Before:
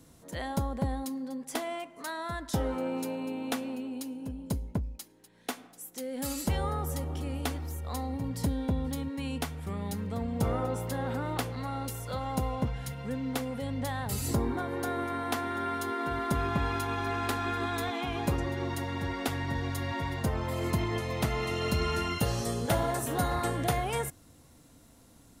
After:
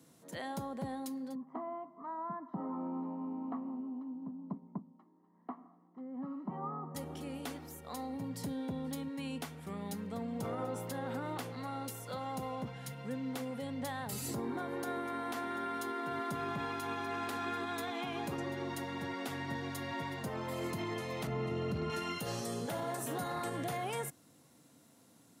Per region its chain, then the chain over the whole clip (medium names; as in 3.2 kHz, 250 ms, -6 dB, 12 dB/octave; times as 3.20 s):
1.35–6.95 s: Chebyshev band-pass 180–1200 Hz, order 3 + band-stop 830 Hz, Q 10 + comb 1 ms, depth 76%
21.27–21.90 s: tilt EQ -3.5 dB/octave + hard clipper -11.5 dBFS
whole clip: high-pass 130 Hz 24 dB/octave; peak limiter -24 dBFS; trim -4.5 dB